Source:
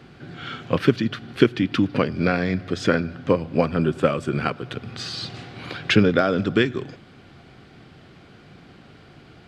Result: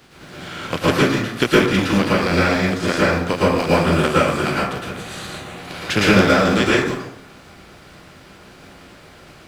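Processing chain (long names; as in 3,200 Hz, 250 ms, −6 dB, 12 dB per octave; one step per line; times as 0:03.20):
compressing power law on the bin magnitudes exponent 0.55
0:04.83–0:05.58: parametric band 5,100 Hz −13 dB 0.41 octaves
dense smooth reverb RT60 0.73 s, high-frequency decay 0.45×, pre-delay 100 ms, DRR −7 dB
level −3.5 dB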